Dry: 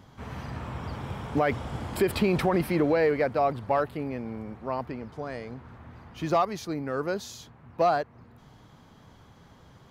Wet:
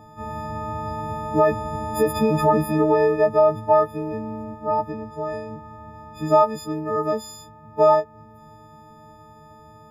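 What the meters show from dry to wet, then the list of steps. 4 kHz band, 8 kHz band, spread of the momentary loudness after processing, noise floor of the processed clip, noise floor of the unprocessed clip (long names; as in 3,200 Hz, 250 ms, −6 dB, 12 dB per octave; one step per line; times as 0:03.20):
−0.5 dB, can't be measured, 17 LU, −47 dBFS, −55 dBFS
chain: every partial snapped to a pitch grid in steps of 6 semitones
high shelf with overshoot 1,600 Hz −13.5 dB, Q 1.5
every ending faded ahead of time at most 410 dB per second
level +4 dB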